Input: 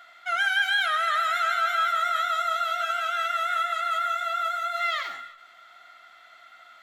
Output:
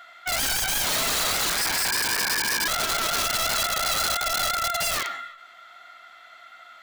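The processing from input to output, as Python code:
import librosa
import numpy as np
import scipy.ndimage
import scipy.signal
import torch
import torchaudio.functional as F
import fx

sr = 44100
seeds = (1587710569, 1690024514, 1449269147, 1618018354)

y = fx.freq_invert(x, sr, carrier_hz=3000, at=(1.56, 2.68))
y = (np.mod(10.0 ** (23.5 / 20.0) * y + 1.0, 2.0) - 1.0) / 10.0 ** (23.5 / 20.0)
y = y * librosa.db_to_amplitude(3.5)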